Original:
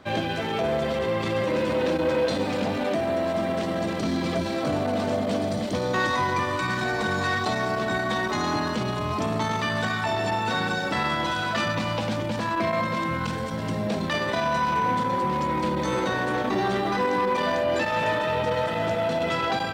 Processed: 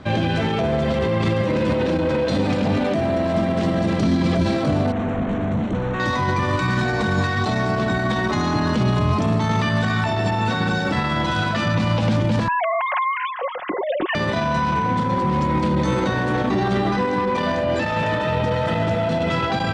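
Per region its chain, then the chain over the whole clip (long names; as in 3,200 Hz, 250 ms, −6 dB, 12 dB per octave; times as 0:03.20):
0:04.92–0:06.00: hard clipping −30 dBFS + moving average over 9 samples + notch filter 590 Hz, Q 18
0:12.48–0:14.15: three sine waves on the formant tracks + comb filter 5.5 ms, depth 34%
whole clip: low-pass filter 8,300 Hz 12 dB per octave; brickwall limiter −20.5 dBFS; bass and treble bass +9 dB, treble −1 dB; level +6 dB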